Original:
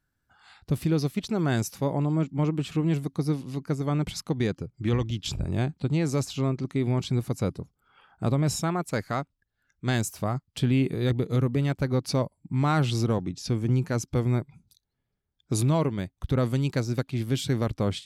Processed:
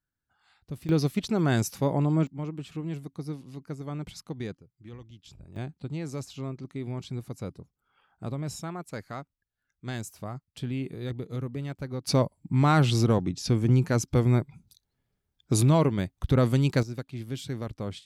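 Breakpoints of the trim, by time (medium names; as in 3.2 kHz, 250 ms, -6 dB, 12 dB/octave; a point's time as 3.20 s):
-11 dB
from 0.89 s +1 dB
from 2.27 s -9 dB
from 4.57 s -19.5 dB
from 5.56 s -9 dB
from 12.07 s +2.5 dB
from 16.83 s -8 dB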